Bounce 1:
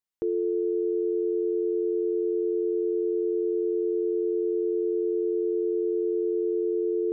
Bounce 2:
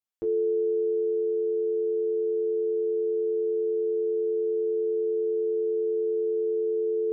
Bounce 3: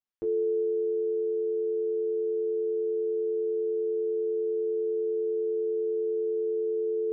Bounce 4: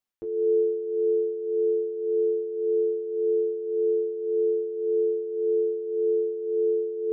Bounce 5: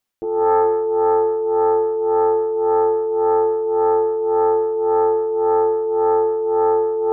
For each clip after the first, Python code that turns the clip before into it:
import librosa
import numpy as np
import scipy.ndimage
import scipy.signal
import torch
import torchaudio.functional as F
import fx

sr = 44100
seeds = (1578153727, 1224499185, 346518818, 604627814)

y1 = fx.rider(x, sr, range_db=10, speed_s=2.0)
y1 = fx.comb_fb(y1, sr, f0_hz=110.0, decay_s=0.18, harmonics='all', damping=0.0, mix_pct=100)
y1 = y1 * 10.0 ** (2.5 / 20.0)
y2 = fx.air_absorb(y1, sr, metres=96.0)
y2 = fx.echo_feedback(y2, sr, ms=204, feedback_pct=53, wet_db=-19)
y2 = y2 * 10.0 ** (-1.5 / 20.0)
y3 = y2 * (1.0 - 0.67 / 2.0 + 0.67 / 2.0 * np.cos(2.0 * np.pi * 1.8 * (np.arange(len(y2)) / sr)))
y3 = y3 * 10.0 ** (6.0 / 20.0)
y4 = fx.self_delay(y3, sr, depth_ms=0.54)
y4 = y4 + 10.0 ** (-10.5 / 20.0) * np.pad(y4, (int(164 * sr / 1000.0), 0))[:len(y4)]
y4 = y4 * 10.0 ** (8.5 / 20.0)